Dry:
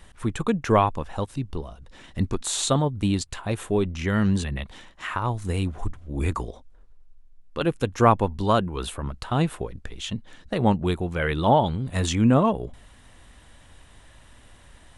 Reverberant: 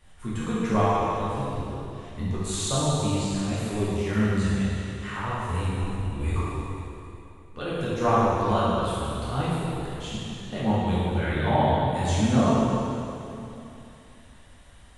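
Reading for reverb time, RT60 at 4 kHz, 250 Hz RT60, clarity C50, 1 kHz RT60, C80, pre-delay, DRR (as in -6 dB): 2.9 s, 2.7 s, 3.0 s, -4.0 dB, 2.9 s, -2.0 dB, 4 ms, -10.5 dB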